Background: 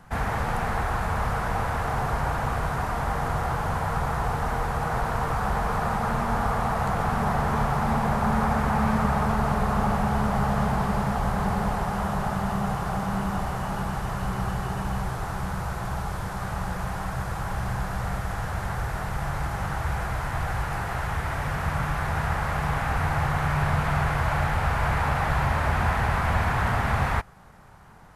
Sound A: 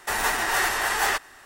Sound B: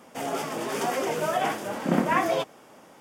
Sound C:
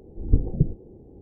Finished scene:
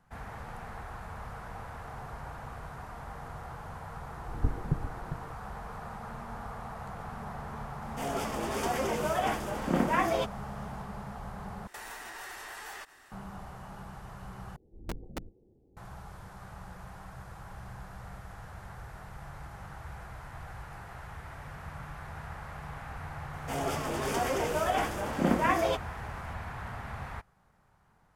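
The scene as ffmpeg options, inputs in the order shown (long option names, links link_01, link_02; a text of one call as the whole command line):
ffmpeg -i bed.wav -i cue0.wav -i cue1.wav -i cue2.wav -filter_complex "[3:a]asplit=2[link_01][link_02];[2:a]asplit=2[link_03][link_04];[0:a]volume=-16dB[link_05];[link_01]aecho=1:1:399:0.335[link_06];[1:a]acompressor=threshold=-32dB:ratio=6:attack=3.2:release=140:knee=1:detection=peak[link_07];[link_02]aeval=exprs='(mod(3.98*val(0)+1,2)-1)/3.98':channel_layout=same[link_08];[link_05]asplit=3[link_09][link_10][link_11];[link_09]atrim=end=11.674[link_12];[link_07]atrim=end=1.45,asetpts=PTS-STARTPTS,volume=-8.5dB[link_13];[link_10]atrim=start=13.116:end=14.564[link_14];[link_08]atrim=end=1.21,asetpts=PTS-STARTPTS,volume=-17dB[link_15];[link_11]atrim=start=15.766[link_16];[link_06]atrim=end=1.21,asetpts=PTS-STARTPTS,volume=-9.5dB,afade=type=in:duration=0.004:curve=hsin,afade=type=out:start_time=1.206:duration=0.004:curve=hsin,adelay=4110[link_17];[link_03]atrim=end=3,asetpts=PTS-STARTPTS,volume=-4dB,afade=type=in:duration=0.004:curve=hsin,afade=type=out:start_time=2.996:duration=0.004:curve=hsin,adelay=7820[link_18];[link_04]atrim=end=3,asetpts=PTS-STARTPTS,volume=-3dB,afade=type=in:duration=0.004:curve=hsin,afade=type=out:start_time=2.996:duration=0.004:curve=hsin,adelay=23330[link_19];[link_12][link_13]acrossfade=duration=0.004:curve1=hsin:curve2=hsin[link_20];[link_20][link_14]acrossfade=duration=0.004:curve1=hsin:curve2=hsin[link_21];[link_21][link_15]acrossfade=duration=0.004:curve1=hsin:curve2=hsin[link_22];[link_22][link_16]acrossfade=duration=0.004:curve1=hsin:curve2=hsin[link_23];[link_23][link_17][link_18][link_19]amix=inputs=4:normalize=0" out.wav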